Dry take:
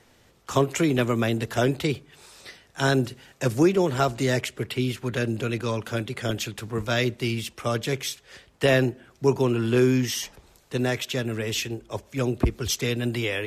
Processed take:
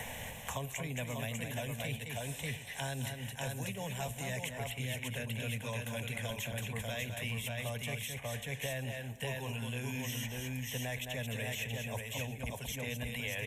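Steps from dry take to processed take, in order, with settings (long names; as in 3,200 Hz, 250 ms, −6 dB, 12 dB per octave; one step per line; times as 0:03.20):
high-shelf EQ 3,400 Hz +8 dB
reversed playback
downward compressor, threshold −29 dBFS, peak gain reduction 14 dB
reversed playback
phaser with its sweep stopped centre 1,300 Hz, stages 6
multi-tap delay 215/591/699 ms −7.5/−3.5/−18.5 dB
multiband upward and downward compressor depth 100%
level −4 dB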